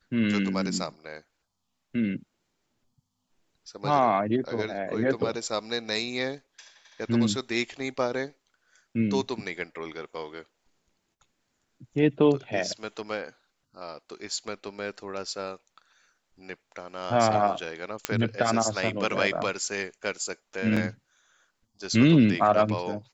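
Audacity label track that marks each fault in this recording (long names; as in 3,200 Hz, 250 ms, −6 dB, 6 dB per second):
18.050000	18.050000	click −8 dBFS
20.760000	20.770000	drop-out 5.7 ms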